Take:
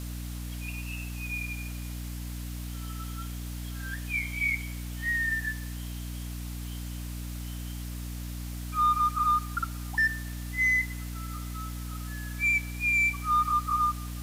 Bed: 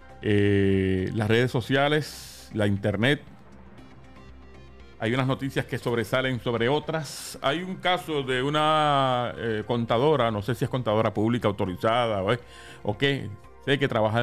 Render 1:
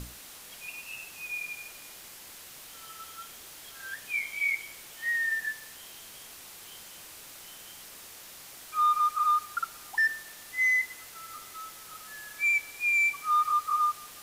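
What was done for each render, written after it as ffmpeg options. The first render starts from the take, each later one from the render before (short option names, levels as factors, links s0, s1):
-af "bandreject=f=60:t=h:w=6,bandreject=f=120:t=h:w=6,bandreject=f=180:t=h:w=6,bandreject=f=240:t=h:w=6,bandreject=f=300:t=h:w=6"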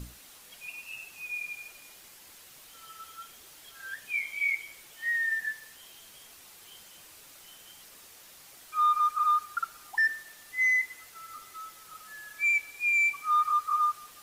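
-af "afftdn=nr=6:nf=-48"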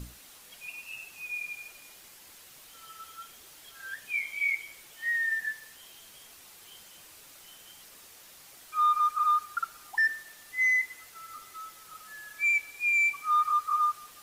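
-af anull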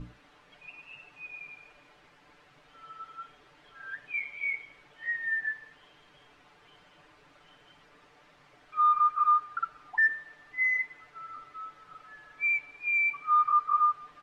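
-af "lowpass=1900,aecho=1:1:6.8:0.65"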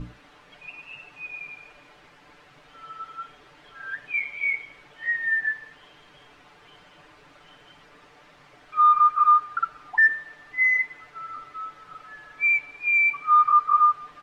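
-af "volume=2.11"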